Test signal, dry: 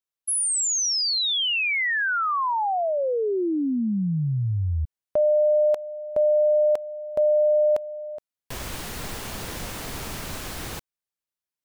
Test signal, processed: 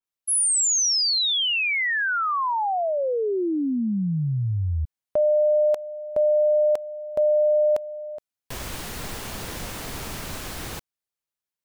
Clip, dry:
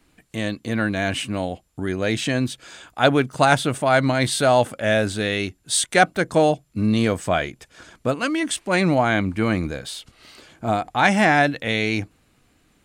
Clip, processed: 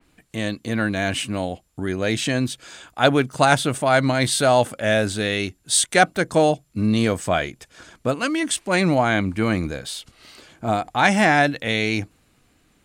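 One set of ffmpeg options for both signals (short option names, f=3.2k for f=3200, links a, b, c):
-af "adynamicequalizer=threshold=0.0178:dfrequency=3900:dqfactor=0.7:tfrequency=3900:tqfactor=0.7:attack=5:release=100:ratio=0.375:range=1.5:mode=boostabove:tftype=highshelf"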